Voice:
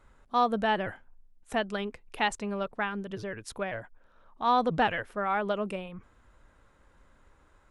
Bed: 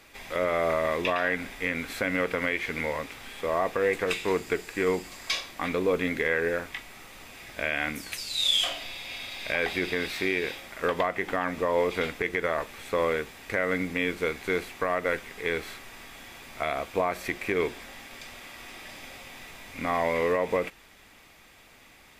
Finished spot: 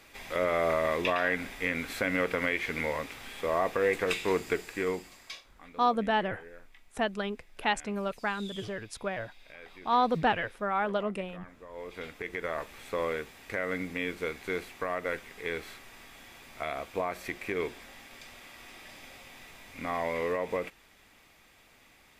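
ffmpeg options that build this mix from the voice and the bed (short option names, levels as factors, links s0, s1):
-filter_complex "[0:a]adelay=5450,volume=0.944[s0];[1:a]volume=5.62,afade=t=out:st=4.5:d=0.96:silence=0.0944061,afade=t=in:st=11.69:d=0.9:silence=0.149624[s1];[s0][s1]amix=inputs=2:normalize=0"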